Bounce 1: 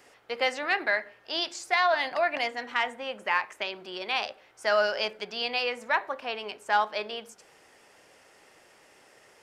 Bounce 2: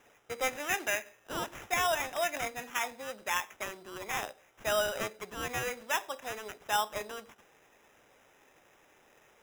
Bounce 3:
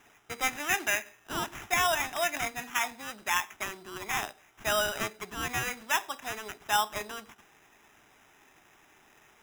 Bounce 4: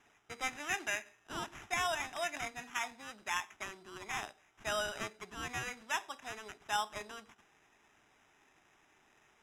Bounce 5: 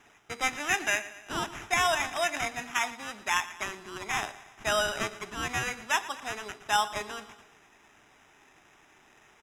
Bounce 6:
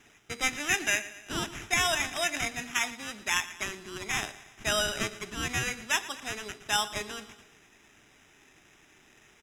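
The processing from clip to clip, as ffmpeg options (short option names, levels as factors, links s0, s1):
-af "acrusher=samples=10:mix=1:aa=0.000001,volume=0.531"
-af "equalizer=f=520:t=o:w=0.36:g=-14.5,volume=1.58"
-af "lowpass=8800,volume=0.422"
-af "aecho=1:1:116|232|348|464|580:0.141|0.0791|0.0443|0.0248|0.0139,volume=2.66"
-af "equalizer=f=920:t=o:w=1.6:g=-9.5,volume=1.5"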